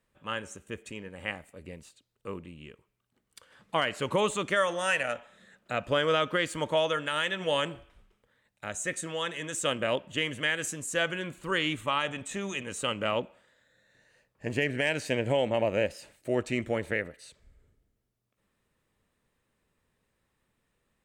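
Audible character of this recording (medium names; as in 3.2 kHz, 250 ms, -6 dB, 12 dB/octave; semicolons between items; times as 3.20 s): noise floor -78 dBFS; spectral tilt -3.5 dB/octave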